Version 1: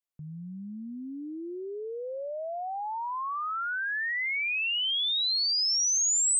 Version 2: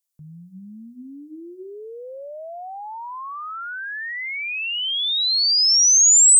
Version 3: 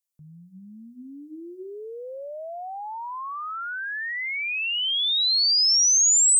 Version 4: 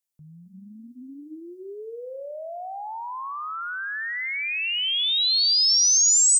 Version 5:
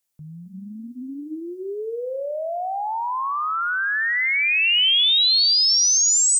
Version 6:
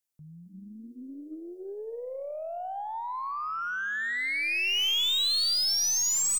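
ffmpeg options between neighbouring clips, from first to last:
ffmpeg -i in.wav -af "bass=frequency=250:gain=0,treble=frequency=4000:gain=14,bandreject=frequency=60:width_type=h:width=6,bandreject=frequency=120:width_type=h:width=6,bandreject=frequency=180:width_type=h:width=6,bandreject=frequency=240:width_type=h:width=6,bandreject=frequency=300:width_type=h:width=6,bandreject=frequency=360:width_type=h:width=6" out.wav
ffmpeg -i in.wav -af "dynaudnorm=framelen=310:gausssize=7:maxgain=5dB,volume=-5.5dB" out.wav
ffmpeg -i in.wav -filter_complex "[0:a]asplit=5[link_01][link_02][link_03][link_04][link_05];[link_02]adelay=266,afreqshift=56,volume=-12dB[link_06];[link_03]adelay=532,afreqshift=112,volume=-19.5dB[link_07];[link_04]adelay=798,afreqshift=168,volume=-27.1dB[link_08];[link_05]adelay=1064,afreqshift=224,volume=-34.6dB[link_09];[link_01][link_06][link_07][link_08][link_09]amix=inputs=5:normalize=0" out.wav
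ffmpeg -i in.wav -af "alimiter=limit=-20.5dB:level=0:latency=1,volume=8dB" out.wav
ffmpeg -i in.wav -filter_complex "[0:a]aeval=exprs='0.251*(cos(1*acos(clip(val(0)/0.251,-1,1)))-cos(1*PI/2))+0.0501*(cos(2*acos(clip(val(0)/0.251,-1,1)))-cos(2*PI/2))+0.0631*(cos(4*acos(clip(val(0)/0.251,-1,1)))-cos(4*PI/2))+0.0282*(cos(6*acos(clip(val(0)/0.251,-1,1)))-cos(6*PI/2))':channel_layout=same,asplit=5[link_01][link_02][link_03][link_04][link_05];[link_02]adelay=296,afreqshift=150,volume=-20.5dB[link_06];[link_03]adelay=592,afreqshift=300,volume=-25.4dB[link_07];[link_04]adelay=888,afreqshift=450,volume=-30.3dB[link_08];[link_05]adelay=1184,afreqshift=600,volume=-35.1dB[link_09];[link_01][link_06][link_07][link_08][link_09]amix=inputs=5:normalize=0,volume=-9dB" out.wav

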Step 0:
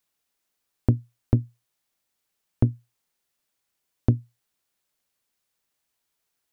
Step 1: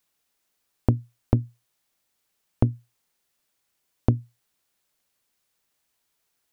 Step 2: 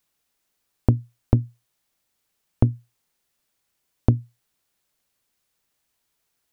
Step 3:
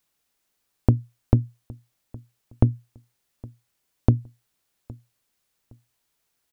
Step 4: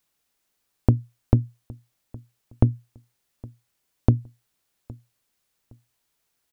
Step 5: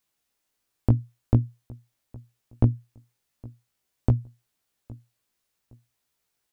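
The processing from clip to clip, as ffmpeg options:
ffmpeg -i in.wav -af "acompressor=threshold=-18dB:ratio=6,volume=3.5dB" out.wav
ffmpeg -i in.wav -af "lowshelf=frequency=200:gain=4" out.wav
ffmpeg -i in.wav -filter_complex "[0:a]asplit=2[link_01][link_02];[link_02]adelay=814,lowpass=frequency=2000:poles=1,volume=-22.5dB,asplit=2[link_03][link_04];[link_04]adelay=814,lowpass=frequency=2000:poles=1,volume=0.28[link_05];[link_01][link_03][link_05]amix=inputs=3:normalize=0" out.wav
ffmpeg -i in.wav -af anull out.wav
ffmpeg -i in.wav -af "flanger=delay=15.5:depth=2.3:speed=0.49" out.wav

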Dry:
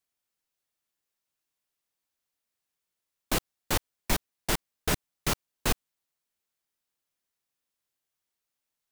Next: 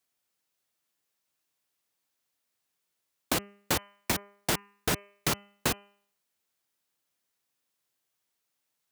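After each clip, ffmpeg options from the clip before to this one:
ffmpeg -i in.wav -af "acompressor=threshold=-27dB:ratio=6,highpass=89,bandreject=frequency=201.9:width_type=h:width=4,bandreject=frequency=403.8:width_type=h:width=4,bandreject=frequency=605.7:width_type=h:width=4,bandreject=frequency=807.6:width_type=h:width=4,bandreject=frequency=1009.5:width_type=h:width=4,bandreject=frequency=1211.4:width_type=h:width=4,bandreject=frequency=1413.3:width_type=h:width=4,bandreject=frequency=1615.2:width_type=h:width=4,bandreject=frequency=1817.1:width_type=h:width=4,bandreject=frequency=2019:width_type=h:width=4,bandreject=frequency=2220.9:width_type=h:width=4,bandreject=frequency=2422.8:width_type=h:width=4,bandreject=frequency=2624.7:width_type=h:width=4,bandreject=frequency=2826.6:width_type=h:width=4,bandreject=frequency=3028.5:width_type=h:width=4,volume=4.5dB" out.wav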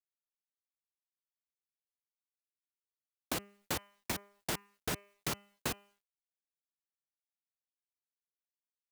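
ffmpeg -i in.wav -af "acrusher=bits=10:mix=0:aa=0.000001,volume=-8dB" out.wav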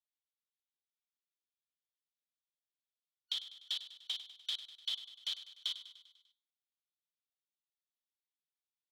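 ffmpeg -i in.wav -filter_complex "[0:a]afftfilt=real='real(if(lt(b,272),68*(eq(floor(b/68),0)*1+eq(floor(b/68),1)*3+eq(floor(b/68),2)*0+eq(floor(b/68),3)*2)+mod(b,68),b),0)':imag='imag(if(lt(b,272),68*(eq(floor(b/68),0)*1+eq(floor(b/68),1)*3+eq(floor(b/68),2)*0+eq(floor(b/68),3)*2)+mod(b,68),b),0)':win_size=2048:overlap=0.75,bandpass=frequency=3500:width_type=q:width=3.4:csg=0,asplit=2[link_01][link_02];[link_02]aecho=0:1:99|198|297|396|495|594:0.224|0.13|0.0753|0.0437|0.0253|0.0147[link_03];[link_01][link_03]amix=inputs=2:normalize=0,volume=2dB" out.wav

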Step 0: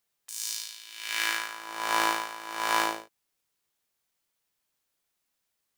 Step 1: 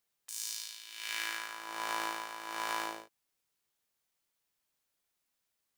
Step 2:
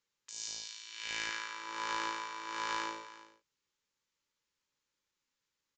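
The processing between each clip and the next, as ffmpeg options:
ffmpeg -i in.wav -af "acompressor=threshold=-30dB:ratio=3,volume=-3dB" out.wav
ffmpeg -i in.wav -af "asuperstop=centerf=700:order=12:qfactor=3.6,aecho=1:1:339:0.158,aresample=16000,aeval=exprs='clip(val(0),-1,0.0376)':channel_layout=same,aresample=44100" out.wav

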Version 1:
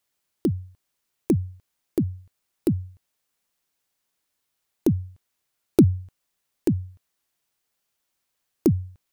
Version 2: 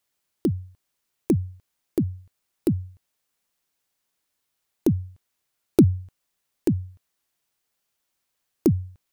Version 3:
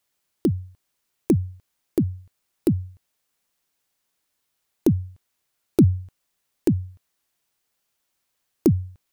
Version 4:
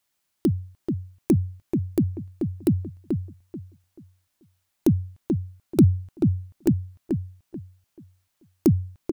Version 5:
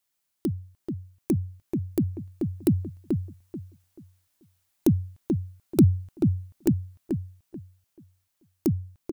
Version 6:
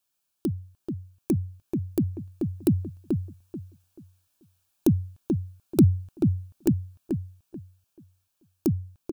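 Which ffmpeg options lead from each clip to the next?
ffmpeg -i in.wav -af anull out.wav
ffmpeg -i in.wav -af "alimiter=level_in=7.5dB:limit=-1dB:release=50:level=0:latency=1,volume=-5.5dB" out.wav
ffmpeg -i in.wav -filter_complex "[0:a]equalizer=frequency=460:width=3.9:gain=-7,asplit=2[link_01][link_02];[link_02]adelay=435,lowpass=frequency=1600:poles=1,volume=-5dB,asplit=2[link_03][link_04];[link_04]adelay=435,lowpass=frequency=1600:poles=1,volume=0.28,asplit=2[link_05][link_06];[link_06]adelay=435,lowpass=frequency=1600:poles=1,volume=0.28,asplit=2[link_07][link_08];[link_08]adelay=435,lowpass=frequency=1600:poles=1,volume=0.28[link_09];[link_01][link_03][link_05][link_07][link_09]amix=inputs=5:normalize=0" out.wav
ffmpeg -i in.wav -af "highshelf=frequency=6400:gain=5,dynaudnorm=framelen=350:gausssize=13:maxgain=11.5dB,volume=-6dB" out.wav
ffmpeg -i in.wav -af "asuperstop=centerf=2000:order=4:qfactor=4.9" out.wav

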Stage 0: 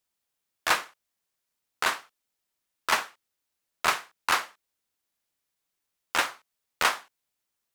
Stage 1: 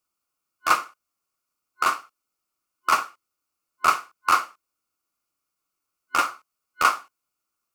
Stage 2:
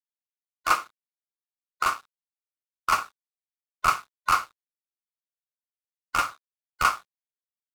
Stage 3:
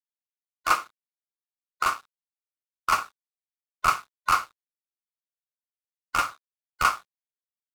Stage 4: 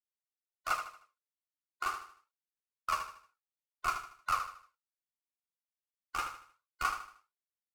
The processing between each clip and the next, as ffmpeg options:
ffmpeg -i in.wav -af "superequalizer=6b=1.58:10b=2.82:11b=0.447:13b=0.501" out.wav
ffmpeg -i in.wav -af "asubboost=boost=9:cutoff=110,aeval=exprs='sgn(val(0))*max(abs(val(0))-0.00473,0)':channel_layout=same,volume=-2dB" out.wav
ffmpeg -i in.wav -af anull out.wav
ffmpeg -i in.wav -filter_complex "[0:a]flanger=delay=1.4:depth=1.6:regen=32:speed=1.4:shape=triangular,asplit=2[link_01][link_02];[link_02]aecho=0:1:77|154|231|308:0.355|0.131|0.0486|0.018[link_03];[link_01][link_03]amix=inputs=2:normalize=0,volume=-7.5dB" out.wav

